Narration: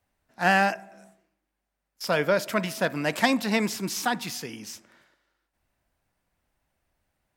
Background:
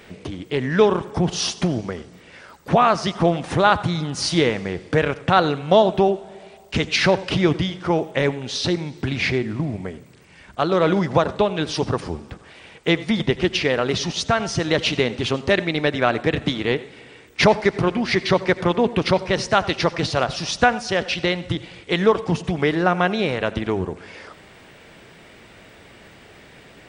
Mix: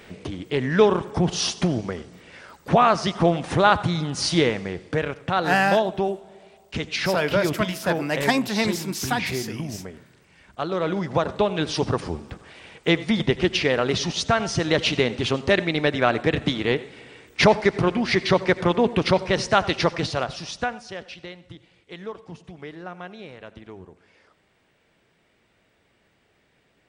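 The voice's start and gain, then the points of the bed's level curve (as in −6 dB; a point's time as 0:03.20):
5.05 s, +1.0 dB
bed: 0:04.36 −1 dB
0:05.16 −7 dB
0:10.92 −7 dB
0:11.56 −1 dB
0:19.86 −1 dB
0:21.35 −18.5 dB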